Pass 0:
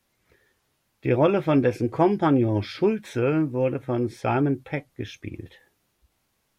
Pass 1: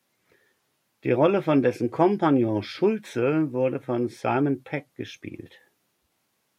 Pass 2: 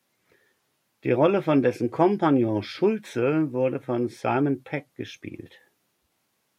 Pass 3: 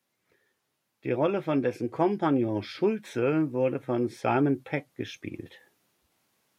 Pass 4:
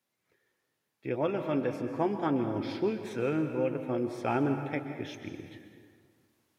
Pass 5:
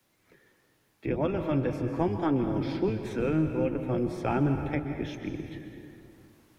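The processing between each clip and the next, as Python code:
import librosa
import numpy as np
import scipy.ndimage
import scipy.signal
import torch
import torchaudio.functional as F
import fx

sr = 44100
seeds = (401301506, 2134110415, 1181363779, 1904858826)

y1 = scipy.signal.sosfilt(scipy.signal.butter(2, 150.0, 'highpass', fs=sr, output='sos'), x)
y2 = y1
y3 = fx.rider(y2, sr, range_db=4, speed_s=2.0)
y3 = y3 * 10.0 ** (-3.5 / 20.0)
y4 = fx.rev_plate(y3, sr, seeds[0], rt60_s=2.0, hf_ratio=0.65, predelay_ms=115, drr_db=7.0)
y4 = y4 * 10.0 ** (-4.5 / 20.0)
y5 = fx.octave_divider(y4, sr, octaves=1, level_db=0.0)
y5 = fx.peak_eq(y5, sr, hz=310.0, db=4.5, octaves=0.3)
y5 = fx.band_squash(y5, sr, depth_pct=40)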